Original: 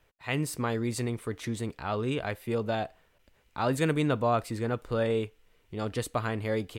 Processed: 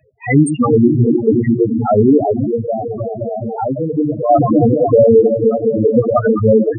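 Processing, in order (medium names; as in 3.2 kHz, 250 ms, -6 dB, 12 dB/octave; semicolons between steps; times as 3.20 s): chunks repeated in reverse 618 ms, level -11.5 dB; high-pass 110 Hz 12 dB/octave; echo whose repeats swap between lows and highs 104 ms, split 920 Hz, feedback 89%, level -5.5 dB; 2.47–4.30 s: compression 6:1, threshold -34 dBFS, peak gain reduction 12.5 dB; dynamic bell 290 Hz, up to +3 dB, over -41 dBFS, Q 5.2; reverb removal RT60 0.61 s; loudest bins only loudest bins 4; treble shelf 3.3 kHz +8 dB; loudness maximiser +23.5 dB; attacks held to a fixed rise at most 530 dB/s; trim -1 dB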